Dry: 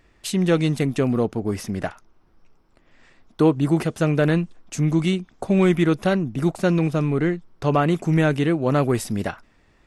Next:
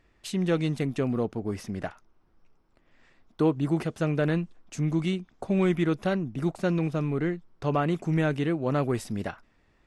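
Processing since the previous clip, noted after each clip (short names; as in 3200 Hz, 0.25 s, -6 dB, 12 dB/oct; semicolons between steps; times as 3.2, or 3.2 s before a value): high shelf 8900 Hz -8.5 dB; gain -6.5 dB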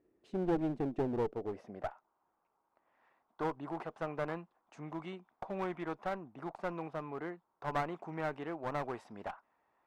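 band-pass sweep 360 Hz -> 900 Hz, 1.01–2.09; one-sided clip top -38.5 dBFS; gain +1 dB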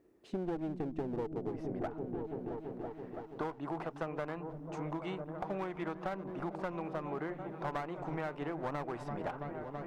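on a send: repeats that get brighter 0.332 s, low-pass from 200 Hz, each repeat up 1 oct, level -6 dB; on the sum: compressor 6:1, threshold -40 dBFS, peak gain reduction 12.5 dB; gain +6 dB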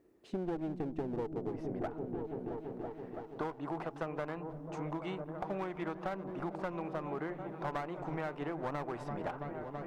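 band-limited delay 0.185 s, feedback 74%, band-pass 560 Hz, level -20.5 dB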